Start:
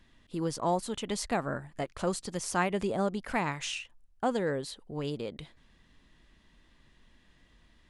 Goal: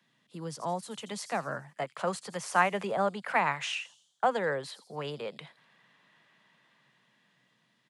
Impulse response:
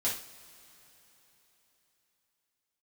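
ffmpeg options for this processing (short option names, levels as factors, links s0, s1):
-filter_complex "[0:a]acrossover=split=350|490|2900[s0][s1][s2][s3];[s0]asuperpass=centerf=180:order=12:qfactor=1.2[s4];[s2]dynaudnorm=f=470:g=7:m=3.55[s5];[s3]asplit=7[s6][s7][s8][s9][s10][s11][s12];[s7]adelay=83,afreqshift=120,volume=0.282[s13];[s8]adelay=166,afreqshift=240,volume=0.146[s14];[s9]adelay=249,afreqshift=360,volume=0.0759[s15];[s10]adelay=332,afreqshift=480,volume=0.0398[s16];[s11]adelay=415,afreqshift=600,volume=0.0207[s17];[s12]adelay=498,afreqshift=720,volume=0.0107[s18];[s6][s13][s14][s15][s16][s17][s18]amix=inputs=7:normalize=0[s19];[s4][s1][s5][s19]amix=inputs=4:normalize=0,volume=0.596"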